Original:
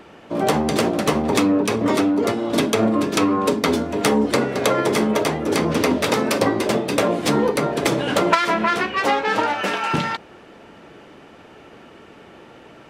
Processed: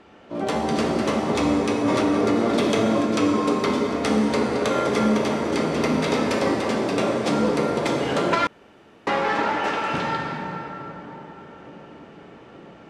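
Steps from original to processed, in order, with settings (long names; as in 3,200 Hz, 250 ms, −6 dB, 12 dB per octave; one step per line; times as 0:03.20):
low-pass filter 7,400 Hz 12 dB per octave
delay with a low-pass on its return 874 ms, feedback 71%, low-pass 450 Hz, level −17.5 dB
dense smooth reverb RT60 4.2 s, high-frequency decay 0.5×, DRR −1.5 dB
0:01.88–0:03.01: envelope flattener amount 70%
0:08.47–0:09.07: fill with room tone
level −7 dB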